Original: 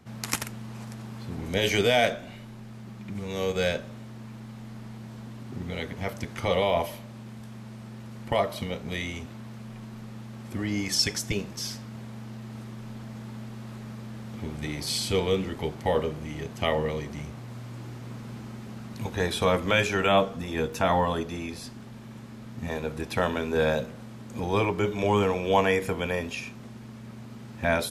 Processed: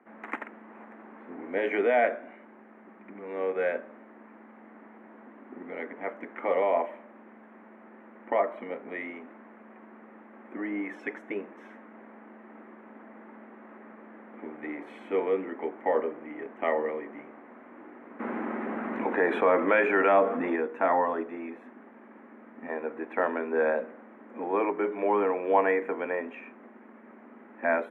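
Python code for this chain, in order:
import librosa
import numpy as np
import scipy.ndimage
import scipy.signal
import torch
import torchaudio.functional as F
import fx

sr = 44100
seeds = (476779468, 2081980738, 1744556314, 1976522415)

y = scipy.signal.sosfilt(scipy.signal.ellip(3, 1.0, 40, [270.0, 2000.0], 'bandpass', fs=sr, output='sos'), x)
y = fx.env_flatten(y, sr, amount_pct=50, at=(18.19, 20.55), fade=0.02)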